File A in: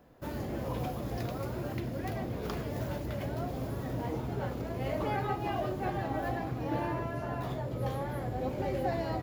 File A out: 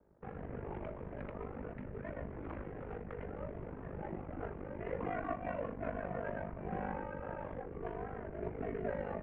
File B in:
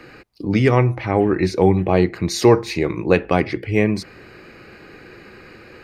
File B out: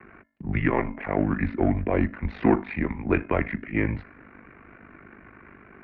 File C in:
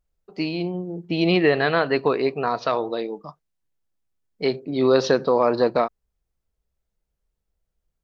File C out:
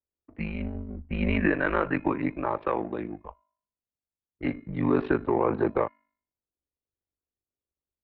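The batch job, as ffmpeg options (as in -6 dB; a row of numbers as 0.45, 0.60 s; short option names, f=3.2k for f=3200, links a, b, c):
-filter_complex "[0:a]aemphasis=mode=production:type=bsi,asplit=2[a][b];[b]volume=13dB,asoftclip=hard,volume=-13dB,volume=-4dB[c];[a][c]amix=inputs=2:normalize=0,adynamicsmooth=sensitivity=7.5:basefreq=920,equalizer=f=160:w=3.7:g=13,bandreject=f=374.2:t=h:w=4,bandreject=f=748.4:t=h:w=4,bandreject=f=1.1226k:t=h:w=4,bandreject=f=1.4968k:t=h:w=4,bandreject=f=1.871k:t=h:w=4,bandreject=f=2.2452k:t=h:w=4,bandreject=f=2.6194k:t=h:w=4,bandreject=f=2.9936k:t=h:w=4,bandreject=f=3.3678k:t=h:w=4,bandreject=f=3.742k:t=h:w=4,bandreject=f=4.1162k:t=h:w=4,bandreject=f=4.4904k:t=h:w=4,bandreject=f=4.8646k:t=h:w=4,bandreject=f=5.2388k:t=h:w=4,bandreject=f=5.613k:t=h:w=4,bandreject=f=5.9872k:t=h:w=4,bandreject=f=6.3614k:t=h:w=4,bandreject=f=6.7356k:t=h:w=4,bandreject=f=7.1098k:t=h:w=4,bandreject=f=7.484k:t=h:w=4,bandreject=f=7.8582k:t=h:w=4,bandreject=f=8.2324k:t=h:w=4,bandreject=f=8.6066k:t=h:w=4,bandreject=f=8.9808k:t=h:w=4,bandreject=f=9.355k:t=h:w=4,bandreject=f=9.7292k:t=h:w=4,bandreject=f=10.1034k:t=h:w=4,bandreject=f=10.4776k:t=h:w=4,bandreject=f=10.8518k:t=h:w=4,aeval=exprs='val(0)*sin(2*PI*25*n/s)':c=same,highpass=f=170:t=q:w=0.5412,highpass=f=170:t=q:w=1.307,lowpass=f=2.5k:t=q:w=0.5176,lowpass=f=2.5k:t=q:w=0.7071,lowpass=f=2.5k:t=q:w=1.932,afreqshift=-120,volume=-5.5dB"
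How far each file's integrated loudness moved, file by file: -7.5, -8.0, -6.0 LU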